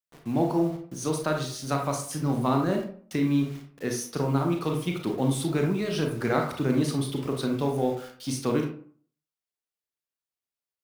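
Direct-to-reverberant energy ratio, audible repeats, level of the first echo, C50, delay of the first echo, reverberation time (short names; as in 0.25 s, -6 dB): 2.0 dB, none, none, 5.5 dB, none, 0.50 s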